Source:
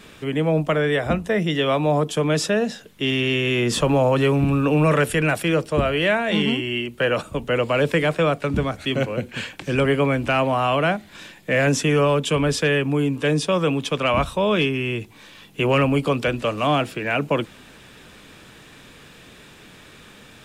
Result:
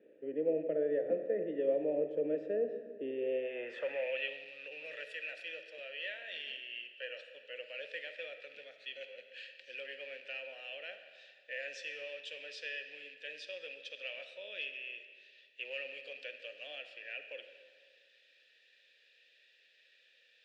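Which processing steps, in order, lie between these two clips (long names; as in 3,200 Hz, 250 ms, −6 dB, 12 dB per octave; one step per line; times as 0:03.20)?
loose part that buzzes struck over −22 dBFS, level −24 dBFS
formant filter e
on a send at −7.5 dB: convolution reverb RT60 1.9 s, pre-delay 5 ms
on the sum: band-pass filter sweep 320 Hz → 4,500 Hz, 0:03.09–0:04.44
level +4 dB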